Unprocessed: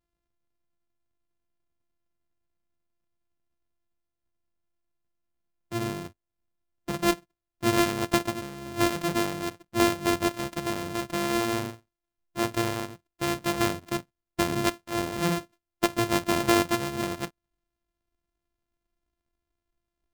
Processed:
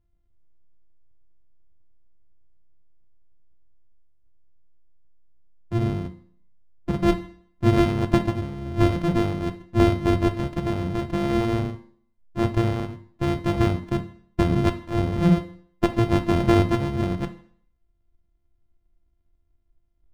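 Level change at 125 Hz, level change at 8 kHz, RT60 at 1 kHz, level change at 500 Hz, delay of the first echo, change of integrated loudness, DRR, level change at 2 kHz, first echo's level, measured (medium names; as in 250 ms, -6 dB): +12.0 dB, under -10 dB, 0.55 s, +3.5 dB, no echo, +4.5 dB, 9.0 dB, -2.5 dB, no echo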